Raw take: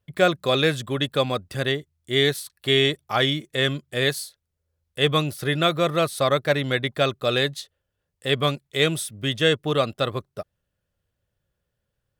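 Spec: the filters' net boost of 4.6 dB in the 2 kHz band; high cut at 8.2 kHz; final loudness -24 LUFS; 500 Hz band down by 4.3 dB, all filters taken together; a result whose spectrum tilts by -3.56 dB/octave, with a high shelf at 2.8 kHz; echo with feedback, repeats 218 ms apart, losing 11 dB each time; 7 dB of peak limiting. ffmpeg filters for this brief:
-af "lowpass=8200,equalizer=f=500:t=o:g=-5.5,equalizer=f=2000:t=o:g=3.5,highshelf=f=2800:g=6,alimiter=limit=0.316:level=0:latency=1,aecho=1:1:218|436|654:0.282|0.0789|0.0221,volume=0.891"

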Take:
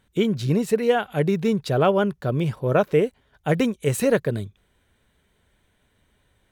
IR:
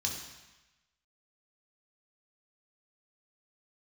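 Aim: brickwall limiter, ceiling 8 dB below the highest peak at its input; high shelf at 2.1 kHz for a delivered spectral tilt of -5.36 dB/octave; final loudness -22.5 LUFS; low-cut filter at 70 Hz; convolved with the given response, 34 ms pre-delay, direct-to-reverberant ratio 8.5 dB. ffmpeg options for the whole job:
-filter_complex "[0:a]highpass=70,highshelf=f=2100:g=6.5,alimiter=limit=0.237:level=0:latency=1,asplit=2[s0][s1];[1:a]atrim=start_sample=2205,adelay=34[s2];[s1][s2]afir=irnorm=-1:irlink=0,volume=0.266[s3];[s0][s3]amix=inputs=2:normalize=0,volume=1.06"

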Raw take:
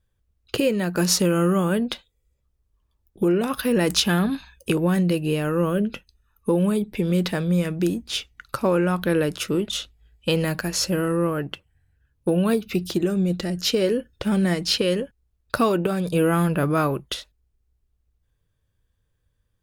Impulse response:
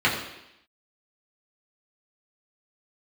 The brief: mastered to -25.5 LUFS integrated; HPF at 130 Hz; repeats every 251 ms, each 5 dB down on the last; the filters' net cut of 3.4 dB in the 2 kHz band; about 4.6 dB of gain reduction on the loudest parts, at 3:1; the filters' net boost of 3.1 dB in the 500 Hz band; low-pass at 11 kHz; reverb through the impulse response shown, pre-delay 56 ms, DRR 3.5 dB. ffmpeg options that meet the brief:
-filter_complex "[0:a]highpass=130,lowpass=11000,equalizer=f=500:t=o:g=4,equalizer=f=2000:t=o:g=-5,acompressor=threshold=0.1:ratio=3,aecho=1:1:251|502|753|1004|1255|1506|1757:0.562|0.315|0.176|0.0988|0.0553|0.031|0.0173,asplit=2[s0][s1];[1:a]atrim=start_sample=2205,adelay=56[s2];[s1][s2]afir=irnorm=-1:irlink=0,volume=0.0891[s3];[s0][s3]amix=inputs=2:normalize=0,volume=0.75"

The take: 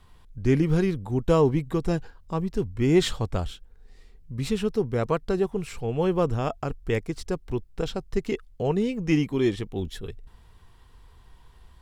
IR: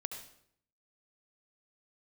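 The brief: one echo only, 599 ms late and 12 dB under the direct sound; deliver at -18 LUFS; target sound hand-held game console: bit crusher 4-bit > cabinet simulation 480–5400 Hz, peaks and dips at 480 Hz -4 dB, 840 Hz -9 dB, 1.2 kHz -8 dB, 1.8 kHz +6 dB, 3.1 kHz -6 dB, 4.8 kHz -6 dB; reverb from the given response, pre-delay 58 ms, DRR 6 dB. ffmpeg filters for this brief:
-filter_complex "[0:a]aecho=1:1:599:0.251,asplit=2[s0][s1];[1:a]atrim=start_sample=2205,adelay=58[s2];[s1][s2]afir=irnorm=-1:irlink=0,volume=0.562[s3];[s0][s3]amix=inputs=2:normalize=0,acrusher=bits=3:mix=0:aa=0.000001,highpass=480,equalizer=f=480:t=q:w=4:g=-4,equalizer=f=840:t=q:w=4:g=-9,equalizer=f=1200:t=q:w=4:g=-8,equalizer=f=1800:t=q:w=4:g=6,equalizer=f=3100:t=q:w=4:g=-6,equalizer=f=4800:t=q:w=4:g=-6,lowpass=f=5400:w=0.5412,lowpass=f=5400:w=1.3066,volume=3.98"

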